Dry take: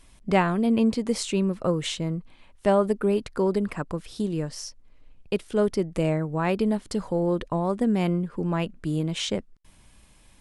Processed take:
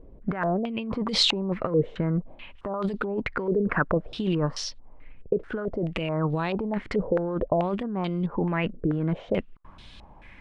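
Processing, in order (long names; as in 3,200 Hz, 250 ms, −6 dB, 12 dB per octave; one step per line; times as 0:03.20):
0:01.95–0:02.74: treble cut that deepens with the level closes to 690 Hz, closed at −19.5 dBFS
compressor whose output falls as the input rises −29 dBFS, ratio −1
low-pass on a step sequencer 4.6 Hz 470–3,800 Hz
level +1.5 dB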